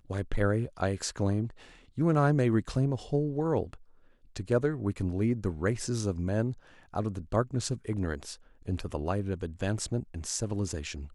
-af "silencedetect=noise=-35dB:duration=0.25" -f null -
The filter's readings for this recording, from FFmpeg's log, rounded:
silence_start: 1.50
silence_end: 1.98 | silence_duration: 0.48
silence_start: 3.74
silence_end: 4.36 | silence_duration: 0.62
silence_start: 6.52
silence_end: 6.94 | silence_duration: 0.41
silence_start: 8.34
silence_end: 8.68 | silence_duration: 0.34